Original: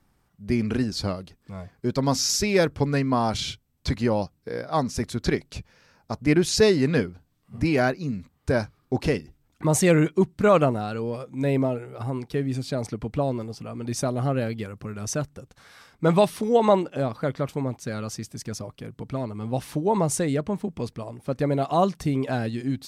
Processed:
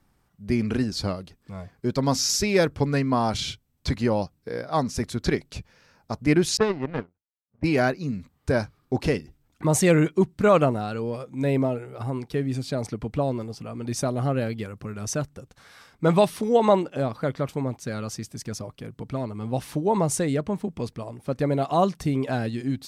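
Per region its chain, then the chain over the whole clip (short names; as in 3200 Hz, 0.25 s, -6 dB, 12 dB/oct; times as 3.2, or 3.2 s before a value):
6.57–7.64 LPF 1900 Hz + power-law curve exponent 2
whole clip: dry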